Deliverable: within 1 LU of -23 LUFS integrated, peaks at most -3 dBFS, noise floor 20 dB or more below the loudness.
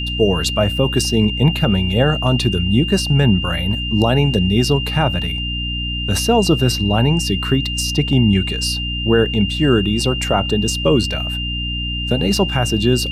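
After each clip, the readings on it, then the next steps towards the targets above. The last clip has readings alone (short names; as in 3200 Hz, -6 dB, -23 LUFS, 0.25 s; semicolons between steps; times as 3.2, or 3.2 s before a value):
hum 60 Hz; harmonics up to 300 Hz; hum level -22 dBFS; steady tone 2800 Hz; tone level -23 dBFS; loudness -17.0 LUFS; peak -2.0 dBFS; loudness target -23.0 LUFS
-> de-hum 60 Hz, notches 5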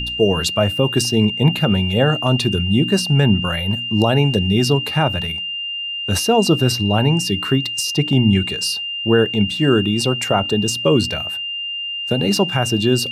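hum none; steady tone 2800 Hz; tone level -23 dBFS
-> notch 2800 Hz, Q 30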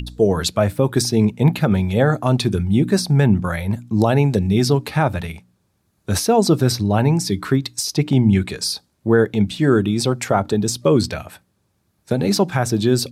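steady tone none; loudness -18.5 LUFS; peak -3.5 dBFS; loudness target -23.0 LUFS
-> gain -4.5 dB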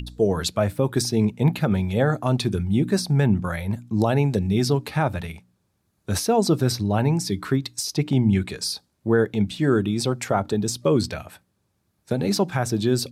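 loudness -23.0 LUFS; peak -8.0 dBFS; noise floor -71 dBFS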